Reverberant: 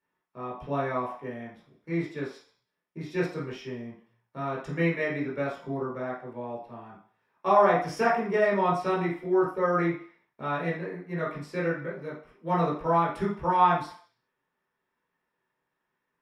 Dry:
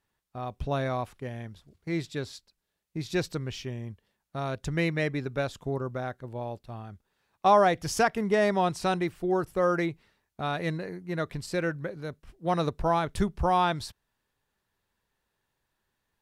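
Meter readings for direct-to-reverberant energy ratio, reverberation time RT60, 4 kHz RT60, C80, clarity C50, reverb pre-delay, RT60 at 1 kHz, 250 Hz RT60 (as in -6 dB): -6.0 dB, 0.45 s, 0.55 s, 9.5 dB, 4.5 dB, 14 ms, 0.50 s, 0.35 s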